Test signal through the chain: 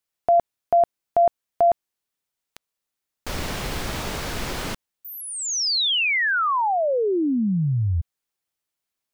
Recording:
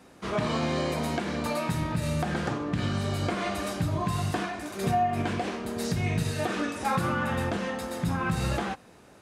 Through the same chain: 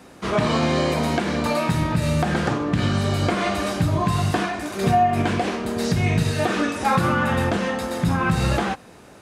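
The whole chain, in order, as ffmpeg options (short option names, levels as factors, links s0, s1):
-filter_complex "[0:a]acrossover=split=6300[s0][s1];[s1]acompressor=threshold=0.00447:ratio=4:attack=1:release=60[s2];[s0][s2]amix=inputs=2:normalize=0,volume=2.37"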